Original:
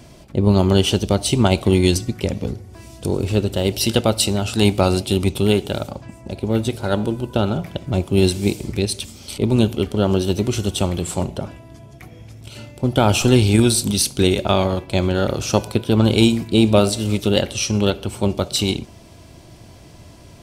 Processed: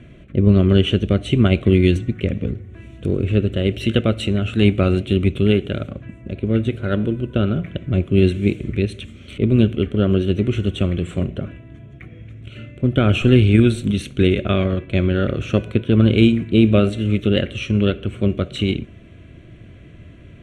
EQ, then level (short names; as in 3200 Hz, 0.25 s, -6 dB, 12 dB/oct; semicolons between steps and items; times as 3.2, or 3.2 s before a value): LPF 3300 Hz 12 dB/oct; fixed phaser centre 2100 Hz, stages 4; +2.5 dB